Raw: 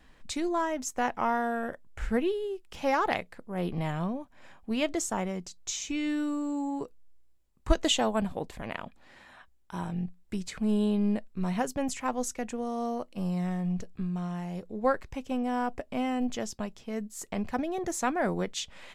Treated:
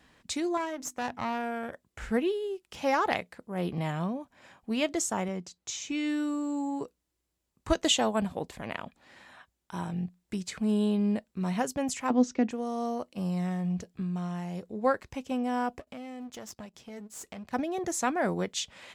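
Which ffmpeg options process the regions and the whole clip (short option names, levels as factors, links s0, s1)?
-filter_complex "[0:a]asettb=1/sr,asplit=3[s0][s1][s2];[s0]atrim=end=0.574[s3];[s1]atrim=start=0.57:end=1.73,asetpts=PTS-STARTPTS,afade=t=in:d=0.004:c=qsin,afade=t=out:st=1.156:d=0.004:c=qsin,bandreject=f=50:t=h:w=6,bandreject=f=100:t=h:w=6,bandreject=f=150:t=h:w=6,bandreject=f=200:t=h:w=6,bandreject=f=250:t=h:w=6,bandreject=f=300:t=h:w=6,bandreject=f=350:t=h:w=6,aeval=exprs='(tanh(17.8*val(0)+0.75)-tanh(0.75))/17.8':c=same[s4];[s2]atrim=start=1.726[s5];[s3][s4]acrossfade=d=0.004:c1=hsin:c2=qsin[s6];[s6][s5]acrossfade=d=0.004:c1=qsin:c2=hsin,asettb=1/sr,asplit=3[s7][s8][s9];[s7]atrim=end=5.284[s10];[s8]atrim=start=5.28:end=5.92,asetpts=PTS-STARTPTS,afade=t=in:d=0.004:c=qsin,afade=t=out:st=0.636:d=0.004:c=qsin,highpass=58,highshelf=f=4400:g=-7.5[s11];[s9]atrim=start=5.916[s12];[s10][s11]acrossfade=d=0.004:c1=hsin:c2=qsin[s13];[s13][s12]acrossfade=d=0.004:c1=qsin:c2=hsin,asettb=1/sr,asplit=3[s14][s15][s16];[s14]atrim=end=12.104[s17];[s15]atrim=start=12.1:end=12.51,asetpts=PTS-STARTPTS,afade=t=in:d=0.004:c=qsin,afade=t=out:st=0.406:d=0.004:c=qsin,lowpass=f=5200:w=0.5412,lowpass=f=5200:w=1.3066,equalizer=f=280:t=o:w=1.1:g=13.5[s18];[s16]atrim=start=12.506[s19];[s17][s18]acrossfade=d=0.004:c1=hsin:c2=qsin[s20];[s20][s19]acrossfade=d=0.004:c1=qsin:c2=hsin,asettb=1/sr,asplit=3[s21][s22][s23];[s21]atrim=end=15.794[s24];[s22]atrim=start=15.79:end=17.53,asetpts=PTS-STARTPTS,afade=t=in:d=0.004:c=qsin,afade=t=out:st=1.736:d=0.004:c=qsin,aeval=exprs='if(lt(val(0),0),0.251*val(0),val(0))':c=same,acompressor=threshold=0.0126:ratio=3:attack=3.2:release=140:knee=1:detection=peak[s25];[s23]atrim=start=17.526[s26];[s24][s25]acrossfade=d=0.004:c1=hsin:c2=qsin[s27];[s27][s26]acrossfade=d=0.004:c1=qsin:c2=hsin,highpass=74,equalizer=f=6400:t=o:w=1.8:g=2.5"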